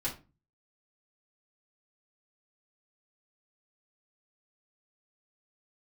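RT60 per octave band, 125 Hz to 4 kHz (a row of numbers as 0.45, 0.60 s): 0.60, 0.45, 0.35, 0.30, 0.25, 0.20 s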